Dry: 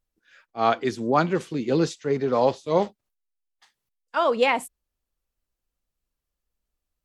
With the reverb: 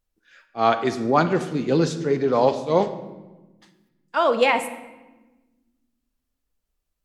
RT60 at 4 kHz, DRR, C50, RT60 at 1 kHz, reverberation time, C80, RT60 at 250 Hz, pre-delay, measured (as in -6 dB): 0.80 s, 9.5 dB, 11.0 dB, 1.1 s, 1.2 s, 13.0 dB, 1.9 s, 24 ms